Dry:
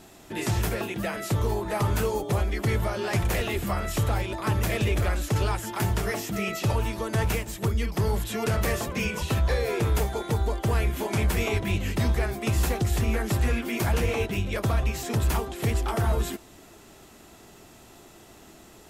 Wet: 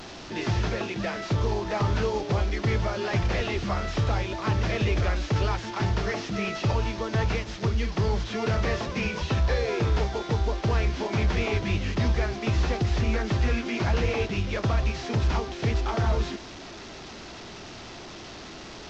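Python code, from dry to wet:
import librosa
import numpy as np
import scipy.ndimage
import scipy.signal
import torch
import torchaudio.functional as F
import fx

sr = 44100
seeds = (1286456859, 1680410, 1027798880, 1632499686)

y = fx.delta_mod(x, sr, bps=32000, step_db=-35.0)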